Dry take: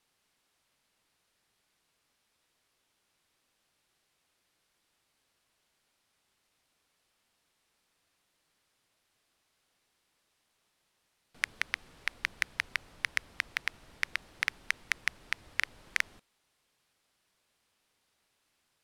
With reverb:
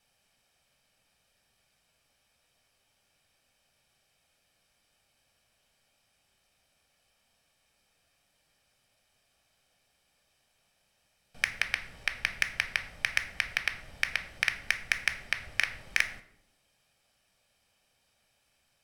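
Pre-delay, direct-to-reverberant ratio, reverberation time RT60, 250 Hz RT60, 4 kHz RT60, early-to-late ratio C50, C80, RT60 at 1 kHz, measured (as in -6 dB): 3 ms, 8.0 dB, 0.75 s, 1.1 s, 0.45 s, 13.0 dB, 15.5 dB, 0.60 s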